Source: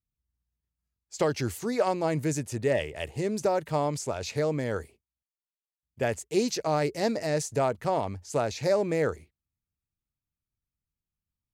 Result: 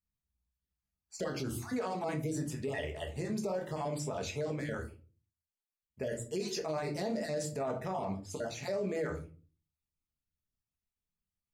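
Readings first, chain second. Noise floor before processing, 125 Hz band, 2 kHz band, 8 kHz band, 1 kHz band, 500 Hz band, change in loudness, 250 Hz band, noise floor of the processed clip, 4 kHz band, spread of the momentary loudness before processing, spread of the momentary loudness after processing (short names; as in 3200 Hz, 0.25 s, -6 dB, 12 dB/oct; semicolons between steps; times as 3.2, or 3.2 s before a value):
under -85 dBFS, -6.5 dB, -7.5 dB, -7.0 dB, -9.5 dB, -9.0 dB, -8.0 dB, -6.5 dB, under -85 dBFS, -7.0 dB, 5 LU, 5 LU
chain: random spectral dropouts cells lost 26%; shoebox room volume 190 m³, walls furnished, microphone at 1.4 m; limiter -21.5 dBFS, peak gain reduction 11.5 dB; gain -5.5 dB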